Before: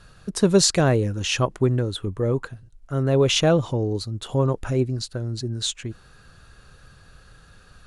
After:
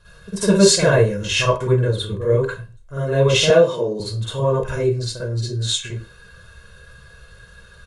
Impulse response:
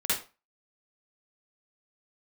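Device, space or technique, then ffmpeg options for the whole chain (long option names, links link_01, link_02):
microphone above a desk: -filter_complex "[0:a]aecho=1:1:1.9:0.66[link_01];[1:a]atrim=start_sample=2205[link_02];[link_01][link_02]afir=irnorm=-1:irlink=0,asettb=1/sr,asplit=3[link_03][link_04][link_05];[link_03]atrim=end=3.504[link_06];[link_04]atrim=start=3.5:end=4,asetpts=PTS-STARTPTS,afade=type=in:duration=0.004:curve=qsin,afade=type=out:start_time=0.496:duration=0.004:curve=qsin,highpass=frequency=180:width=0.5412,highpass=frequency=180:width=1.3066[link_07];[link_05]atrim=start=3.996[link_08];[link_06][link_07]acrossfade=duration=0.004:curve1=hsin:curve2=qsin[link_09];[link_09][link_08]acrossfade=duration=0.004:curve1=qsin:curve2=hsin,volume=-5.5dB"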